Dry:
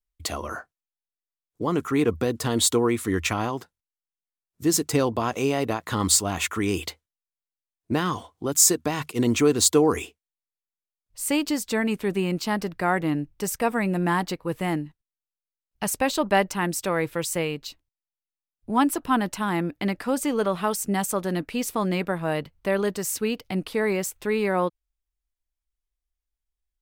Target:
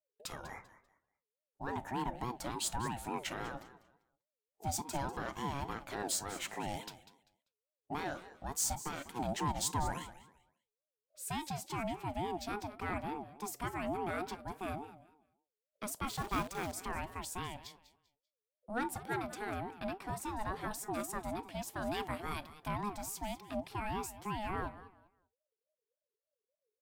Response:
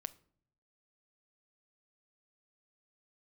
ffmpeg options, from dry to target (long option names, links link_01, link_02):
-filter_complex "[1:a]atrim=start_sample=2205,atrim=end_sample=3969,asetrate=57330,aresample=44100[link_01];[0:a][link_01]afir=irnorm=-1:irlink=0,asoftclip=type=tanh:threshold=-18dB,asettb=1/sr,asplit=3[link_02][link_03][link_04];[link_02]atrim=end=2.514[link_05];[link_03]atrim=start=2.51:end=2.97,asetpts=PTS-STARTPTS,afade=type=in:duration=0.004:curve=qsin,afade=type=out:start_time=0.456:duration=0.004:curve=qsin,highpass=250[link_06];[link_04]atrim=start=2.966[link_07];[link_05][link_06]acrossfade=duration=0.004:curve1=hsin:curve2=qsin[link_08];[link_08][link_07]acrossfade=duration=0.004:curve1=qsin:curve2=hsin,asettb=1/sr,asplit=3[link_09][link_10][link_11];[link_09]atrim=end=16.084[link_12];[link_10]atrim=start=16.08:end=16.73,asetpts=PTS-STARTPTS,afade=type=in:duration=0.004:curve=qsin,afade=type=out:start_time=0.646:duration=0.004:curve=qsin,acrusher=bits=7:dc=4:mix=0:aa=0.000001[link_13];[link_11]atrim=start=16.726[link_14];[link_12][link_13]acrossfade=duration=0.004:curve1=hsin:curve2=qsin[link_15];[link_15][link_14]acrossfade=duration=0.004:curve1=qsin:curve2=hsin,asettb=1/sr,asplit=3[link_16][link_17][link_18];[link_16]atrim=end=21.824[link_19];[link_17]atrim=start=21.82:end=22.68,asetpts=PTS-STARTPTS,afade=type=in:duration=0.004:curve=qsin,afade=type=out:start_time=0.856:duration=0.004:curve=qsin,highshelf=frequency=2800:gain=10.5[link_20];[link_18]atrim=start=22.676[link_21];[link_19][link_20]acrossfade=duration=0.004:curve1=hsin:curve2=qsin[link_22];[link_22][link_21]acrossfade=duration=0.004:curve1=qsin:curve2=hsin,aecho=1:1:196|392|588:0.178|0.0445|0.0111,aeval=exprs='val(0)*sin(2*PI*520*n/s+520*0.2/3.5*sin(2*PI*3.5*n/s))':channel_layout=same,volume=-5.5dB"